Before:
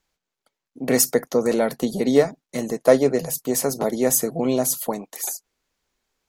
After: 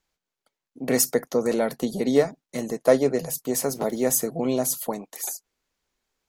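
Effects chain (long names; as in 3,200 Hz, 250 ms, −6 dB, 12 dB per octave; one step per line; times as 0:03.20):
0:03.60–0:04.26: centre clipping without the shift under −43.5 dBFS
level −3 dB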